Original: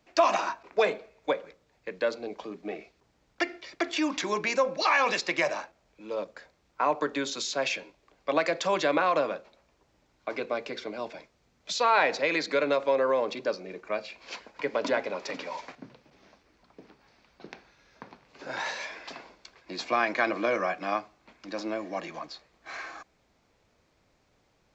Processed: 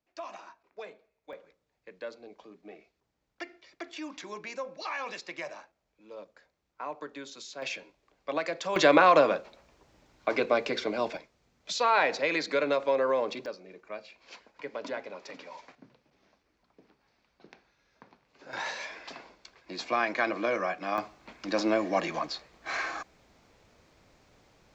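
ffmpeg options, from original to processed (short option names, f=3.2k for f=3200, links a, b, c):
-af "asetnsamples=n=441:p=0,asendcmd='1.33 volume volume -12dB;7.62 volume volume -5.5dB;8.76 volume volume 5.5dB;11.17 volume volume -1.5dB;13.46 volume volume -9dB;18.53 volume volume -2dB;20.98 volume volume 6.5dB',volume=-19dB"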